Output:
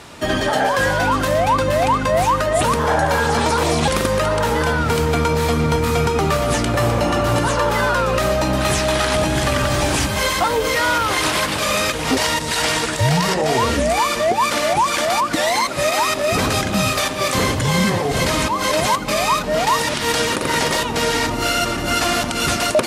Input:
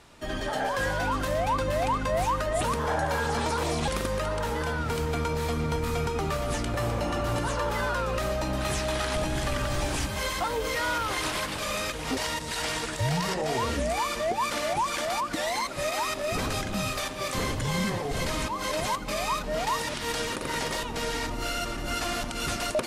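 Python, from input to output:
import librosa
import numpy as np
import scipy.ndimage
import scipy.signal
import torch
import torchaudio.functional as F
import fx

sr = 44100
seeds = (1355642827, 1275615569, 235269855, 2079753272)

p1 = scipy.signal.sosfilt(scipy.signal.butter(2, 68.0, 'highpass', fs=sr, output='sos'), x)
p2 = fx.rider(p1, sr, range_db=10, speed_s=0.5)
p3 = p1 + (p2 * 10.0 ** (2.0 / 20.0))
y = p3 * 10.0 ** (4.0 / 20.0)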